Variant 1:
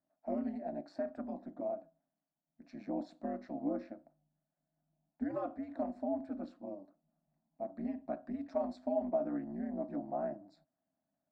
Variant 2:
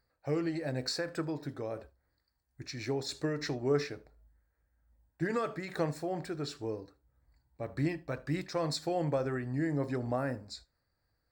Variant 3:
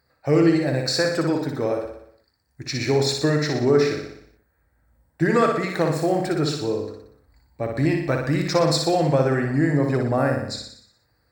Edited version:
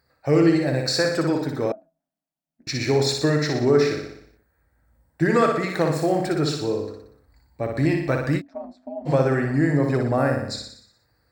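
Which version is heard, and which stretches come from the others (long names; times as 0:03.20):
3
0:01.72–0:02.67: punch in from 1
0:08.39–0:09.08: punch in from 1, crossfade 0.06 s
not used: 2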